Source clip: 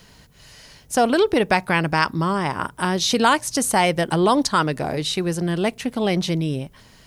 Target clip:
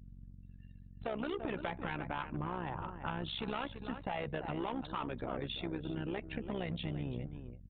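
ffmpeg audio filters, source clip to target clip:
ffmpeg -i in.wav -filter_complex "[0:a]afftdn=noise_reduction=27:noise_floor=-39,flanger=delay=0.4:depth=3.2:regen=-71:speed=0.3:shape=triangular,acrossover=split=700[link_01][link_02];[link_01]asoftclip=type=hard:threshold=-24dB[link_03];[link_03][link_02]amix=inputs=2:normalize=0,adynamicequalizer=threshold=0.00891:dfrequency=2200:dqfactor=3.9:tfrequency=2200:tqfactor=3.9:attack=5:release=100:ratio=0.375:range=2.5:mode=cutabove:tftype=bell,aeval=exprs='val(0)+0.0112*(sin(2*PI*50*n/s)+sin(2*PI*2*50*n/s)/2+sin(2*PI*3*50*n/s)/3+sin(2*PI*4*50*n/s)/4+sin(2*PI*5*50*n/s)/5)':channel_layout=same,asetrate=40517,aresample=44100,asplit=2[link_04][link_05];[link_05]adelay=338.2,volume=-13dB,highshelf=frequency=4000:gain=-7.61[link_06];[link_04][link_06]amix=inputs=2:normalize=0,agate=range=-33dB:threshold=-31dB:ratio=3:detection=peak,asoftclip=type=tanh:threshold=-19.5dB,acompressor=threshold=-38dB:ratio=10,tremolo=f=65:d=0.75,aresample=8000,aresample=44100,volume=5dB" out.wav

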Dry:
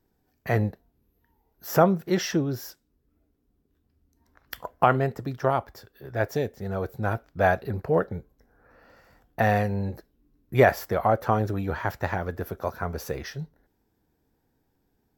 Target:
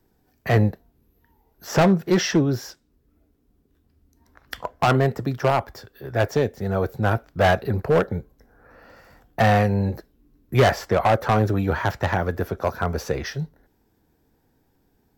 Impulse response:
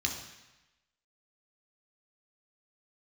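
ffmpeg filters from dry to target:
-filter_complex "[0:a]acrossover=split=160|7900[link_01][link_02][link_03];[link_02]asoftclip=type=hard:threshold=-20dB[link_04];[link_03]acompressor=threshold=-57dB:ratio=6[link_05];[link_01][link_04][link_05]amix=inputs=3:normalize=0,volume=6.5dB"

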